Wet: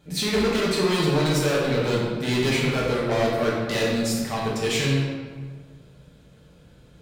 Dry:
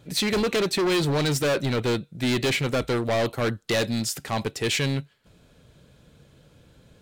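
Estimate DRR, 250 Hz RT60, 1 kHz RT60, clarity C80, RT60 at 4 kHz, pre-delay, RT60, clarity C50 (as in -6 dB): -5.5 dB, 1.8 s, 1.5 s, 2.0 dB, 0.95 s, 4 ms, 1.6 s, 0.0 dB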